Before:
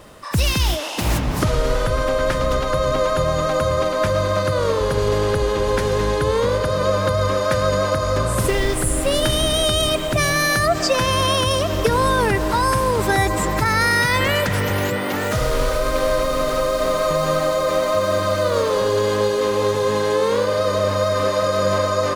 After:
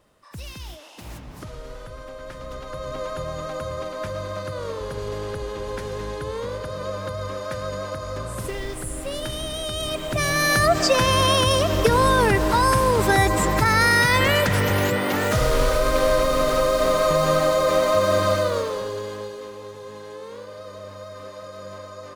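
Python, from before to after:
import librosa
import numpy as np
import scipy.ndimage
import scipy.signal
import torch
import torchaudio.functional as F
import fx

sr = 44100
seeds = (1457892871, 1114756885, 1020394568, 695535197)

y = fx.gain(x, sr, db=fx.line((2.2, -18.5), (3.04, -11.0), (9.65, -11.0), (10.59, 0.0), (18.31, 0.0), (18.77, -9.0), (19.62, -19.0)))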